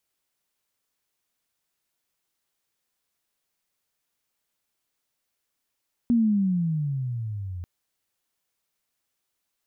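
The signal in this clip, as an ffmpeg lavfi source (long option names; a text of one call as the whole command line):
ffmpeg -f lavfi -i "aevalsrc='pow(10,(-16.5-15*t/1.54)/20)*sin(2*PI*242*1.54/(-18*log(2)/12)*(exp(-18*log(2)/12*t/1.54)-1))':duration=1.54:sample_rate=44100" out.wav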